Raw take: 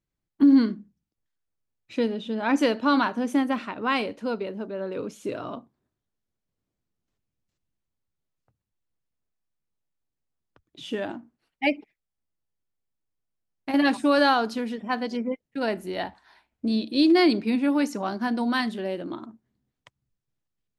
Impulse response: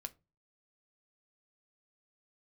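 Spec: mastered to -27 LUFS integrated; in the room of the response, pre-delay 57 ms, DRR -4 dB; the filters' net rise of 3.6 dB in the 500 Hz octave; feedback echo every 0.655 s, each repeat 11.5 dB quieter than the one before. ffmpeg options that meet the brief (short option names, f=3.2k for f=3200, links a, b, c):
-filter_complex "[0:a]equalizer=f=500:t=o:g=4.5,aecho=1:1:655|1310|1965:0.266|0.0718|0.0194,asplit=2[a][b];[1:a]atrim=start_sample=2205,adelay=57[c];[b][c]afir=irnorm=-1:irlink=0,volume=7.5dB[d];[a][d]amix=inputs=2:normalize=0,volume=-8.5dB"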